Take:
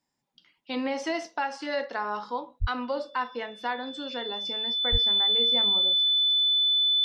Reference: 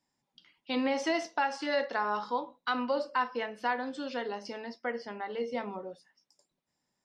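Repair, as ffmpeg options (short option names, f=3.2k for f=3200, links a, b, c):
-filter_complex "[0:a]bandreject=f=3.5k:w=30,asplit=3[a][b][c];[a]afade=t=out:st=2.6:d=0.02[d];[b]highpass=f=140:w=0.5412,highpass=f=140:w=1.3066,afade=t=in:st=2.6:d=0.02,afade=t=out:st=2.72:d=0.02[e];[c]afade=t=in:st=2.72:d=0.02[f];[d][e][f]amix=inputs=3:normalize=0,asplit=3[g][h][i];[g]afade=t=out:st=4.91:d=0.02[j];[h]highpass=f=140:w=0.5412,highpass=f=140:w=1.3066,afade=t=in:st=4.91:d=0.02,afade=t=out:st=5.03:d=0.02[k];[i]afade=t=in:st=5.03:d=0.02[l];[j][k][l]amix=inputs=3:normalize=0"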